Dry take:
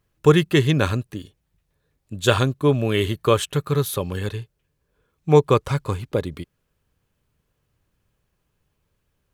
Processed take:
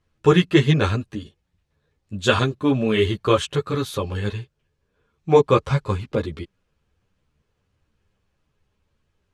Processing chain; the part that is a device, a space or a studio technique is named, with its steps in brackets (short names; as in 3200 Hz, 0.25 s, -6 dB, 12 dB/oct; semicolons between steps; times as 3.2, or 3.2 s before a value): string-machine ensemble chorus (ensemble effect; LPF 6400 Hz 12 dB/oct); gain +4 dB